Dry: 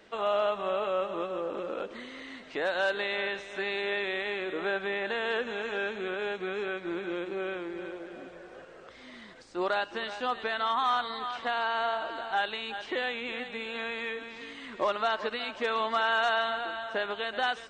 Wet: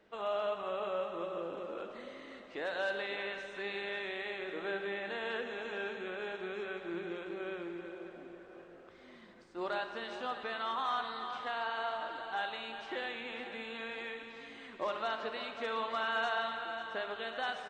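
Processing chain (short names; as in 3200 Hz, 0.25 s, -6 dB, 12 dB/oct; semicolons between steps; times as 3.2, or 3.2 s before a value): feedback echo 0.544 s, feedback 51%, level -13 dB; reverb RT60 1.8 s, pre-delay 33 ms, DRR 7 dB; mismatched tape noise reduction decoder only; gain -8 dB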